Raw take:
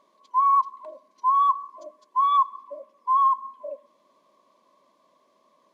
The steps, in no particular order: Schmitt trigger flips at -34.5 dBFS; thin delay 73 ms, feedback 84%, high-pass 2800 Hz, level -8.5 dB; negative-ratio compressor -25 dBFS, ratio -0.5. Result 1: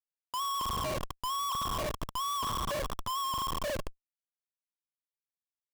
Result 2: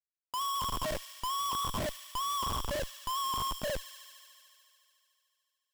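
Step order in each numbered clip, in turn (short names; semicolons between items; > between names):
thin delay > negative-ratio compressor > Schmitt trigger; negative-ratio compressor > Schmitt trigger > thin delay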